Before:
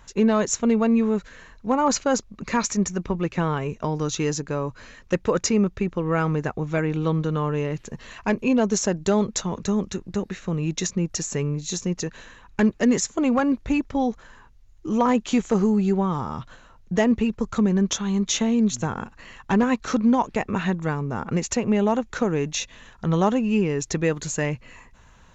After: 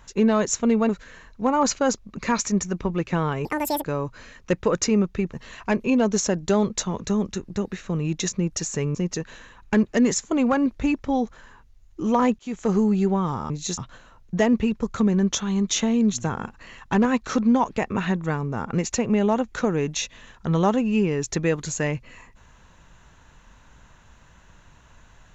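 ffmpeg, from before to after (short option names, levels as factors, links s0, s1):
-filter_complex "[0:a]asplit=9[s0][s1][s2][s3][s4][s5][s6][s7][s8];[s0]atrim=end=0.892[s9];[s1]atrim=start=1.138:end=3.704[s10];[s2]atrim=start=3.7:end=4.46,asetpts=PTS-STARTPTS,asetrate=86436,aresample=44100[s11];[s3]atrim=start=4.456:end=5.952[s12];[s4]atrim=start=7.908:end=11.532[s13];[s5]atrim=start=11.808:end=15.25,asetpts=PTS-STARTPTS,afade=t=out:st=3.438:d=0.004:c=hsin[s14];[s6]atrim=start=15.25:end=16.362,asetpts=PTS-STARTPTS,afade=t=in:d=0.36[s15];[s7]atrim=start=11.528:end=11.812[s16];[s8]atrim=start=16.358[s17];[s9][s10]acrossfade=d=0.004:c1=hsin:c2=hsin[s18];[s18][s11]acrossfade=d=0.004:c1=hsin:c2=hsin[s19];[s19][s12]acrossfade=d=0.004:c1=hsin:c2=hsin[s20];[s20][s13]acrossfade=d=0.004:c1=hsin:c2=hsin[s21];[s14][s15]concat=n=2:v=0:a=1[s22];[s21][s22]acrossfade=d=0.004:c1=hsin:c2=hsin[s23];[s23][s16]acrossfade=d=0.004:c1=hsin:c2=hsin[s24];[s24][s17]acrossfade=d=0.004:c1=hsin:c2=hsin"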